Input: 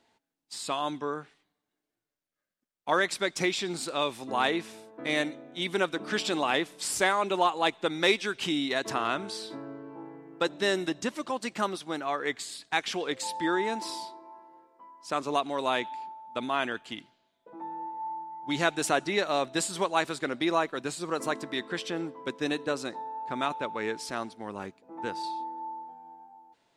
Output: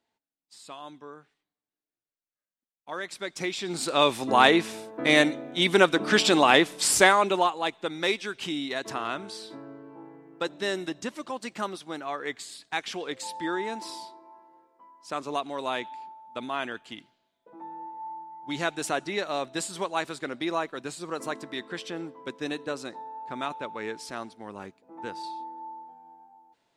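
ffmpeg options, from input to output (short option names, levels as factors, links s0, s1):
-af "volume=2.66,afade=t=in:st=2.89:d=0.72:silence=0.334965,afade=t=in:st=3.61:d=0.48:silence=0.298538,afade=t=out:st=6.93:d=0.64:silence=0.281838"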